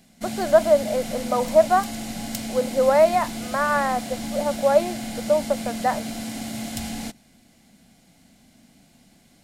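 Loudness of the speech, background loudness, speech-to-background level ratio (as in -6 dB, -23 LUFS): -22.0 LUFS, -31.0 LUFS, 9.0 dB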